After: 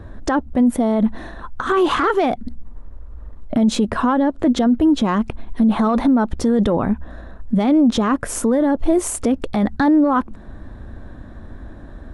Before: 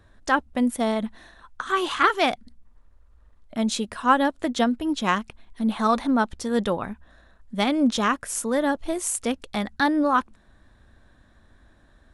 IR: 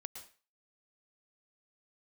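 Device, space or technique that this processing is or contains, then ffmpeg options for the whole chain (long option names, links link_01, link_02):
mastering chain: -filter_complex "[0:a]asettb=1/sr,asplit=3[link_01][link_02][link_03];[link_01]atrim=end=3.914[link_04];[link_02]atrim=start=3.91:end=4.57,asetpts=PTS-STARTPTS,afade=type=in:duration=0.004:curve=qsin,afade=type=out:start_time=0.656:duration=0.004:curve=qsin,highshelf=frequency=9000:gain=-10.5[link_05];[link_03]atrim=start=4.566[link_06];[link_04][link_05]acrossfade=duration=0.004:curve1=hsin:curve2=qsin[link_07];[link_07][link_06]acrossfade=duration=0.004:curve1=qsin:curve2=hsin,equalizer=frequency=290:width_type=o:width=0.77:gain=2,acompressor=threshold=-29dB:ratio=1.5,asoftclip=type=tanh:threshold=-15dB,tiltshelf=frequency=1500:gain=8.5,alimiter=level_in=20dB:limit=-1dB:release=50:level=0:latency=1,volume=-8dB"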